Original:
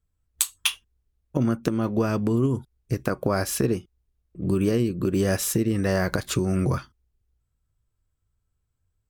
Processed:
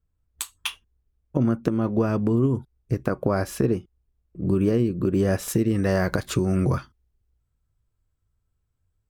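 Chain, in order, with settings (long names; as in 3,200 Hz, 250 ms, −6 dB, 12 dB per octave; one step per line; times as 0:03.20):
high-shelf EQ 2,300 Hz −11 dB, from 0:05.48 −5 dB
level +1.5 dB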